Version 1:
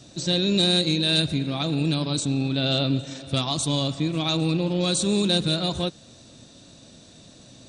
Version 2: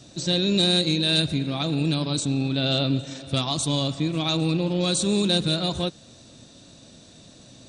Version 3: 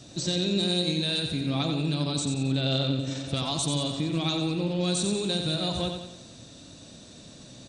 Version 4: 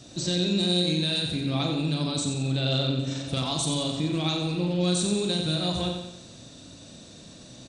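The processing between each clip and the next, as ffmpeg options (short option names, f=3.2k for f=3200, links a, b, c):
-af anull
-filter_complex "[0:a]acompressor=threshold=-25dB:ratio=6,asplit=2[a][b];[b]aecho=0:1:90|180|270|360|450|540:0.501|0.236|0.111|0.052|0.0245|0.0115[c];[a][c]amix=inputs=2:normalize=0"
-filter_complex "[0:a]asplit=2[a][b];[b]adelay=39,volume=-6.5dB[c];[a][c]amix=inputs=2:normalize=0"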